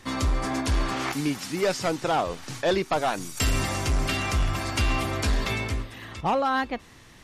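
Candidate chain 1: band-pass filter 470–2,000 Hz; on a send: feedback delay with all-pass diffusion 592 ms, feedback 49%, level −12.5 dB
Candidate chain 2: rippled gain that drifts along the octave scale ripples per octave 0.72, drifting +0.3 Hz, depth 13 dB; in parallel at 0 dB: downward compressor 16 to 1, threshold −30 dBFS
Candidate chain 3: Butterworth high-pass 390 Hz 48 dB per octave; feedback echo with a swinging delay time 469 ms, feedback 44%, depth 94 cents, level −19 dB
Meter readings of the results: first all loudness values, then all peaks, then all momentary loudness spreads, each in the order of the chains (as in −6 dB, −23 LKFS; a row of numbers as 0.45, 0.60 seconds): −31.0, −22.5, −28.5 LKFS; −15.0, −8.0, −13.0 dBFS; 8, 5, 8 LU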